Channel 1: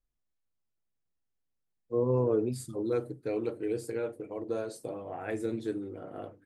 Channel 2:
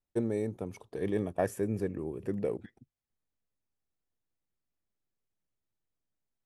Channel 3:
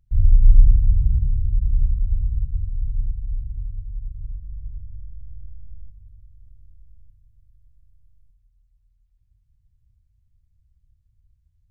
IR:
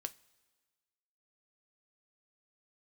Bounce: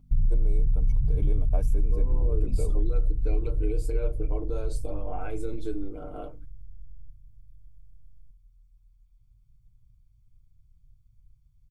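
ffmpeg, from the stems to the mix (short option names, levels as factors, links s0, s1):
-filter_complex "[0:a]alimiter=level_in=1.58:limit=0.0631:level=0:latency=1:release=212,volume=0.631,aeval=exprs='val(0)+0.00178*(sin(2*PI*50*n/s)+sin(2*PI*2*50*n/s)/2+sin(2*PI*3*50*n/s)/3+sin(2*PI*4*50*n/s)/4+sin(2*PI*5*50*n/s)/5)':c=same,volume=1.12[s0];[1:a]adelay=150,volume=0.668[s1];[2:a]asoftclip=type=tanh:threshold=0.398,alimiter=limit=0.178:level=0:latency=1:release=60,aecho=1:1:0.9:0.55,volume=0.944[s2];[s0][s1][s2]amix=inputs=3:normalize=0,asuperstop=centerf=1800:order=4:qfactor=3.7,aecho=1:1:6.7:0.56,acompressor=threshold=0.126:ratio=6"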